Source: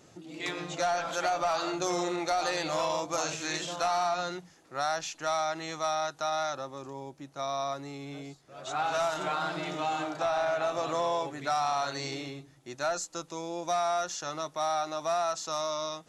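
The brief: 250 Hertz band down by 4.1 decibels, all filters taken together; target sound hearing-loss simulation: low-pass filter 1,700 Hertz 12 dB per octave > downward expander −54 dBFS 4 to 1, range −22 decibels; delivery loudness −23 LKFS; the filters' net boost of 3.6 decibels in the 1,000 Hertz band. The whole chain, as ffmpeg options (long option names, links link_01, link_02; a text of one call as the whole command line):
ffmpeg -i in.wav -af "lowpass=1700,equalizer=frequency=250:width_type=o:gain=-7.5,equalizer=frequency=1000:width_type=o:gain=6.5,agate=range=-22dB:threshold=-54dB:ratio=4,volume=6.5dB" out.wav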